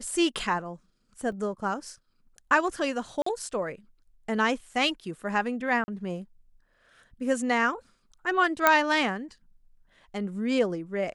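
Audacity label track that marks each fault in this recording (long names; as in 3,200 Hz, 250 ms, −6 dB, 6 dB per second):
1.320000	1.320000	drop-out 2.2 ms
3.220000	3.260000	drop-out 44 ms
5.840000	5.880000	drop-out 40 ms
8.670000	8.670000	click −4 dBFS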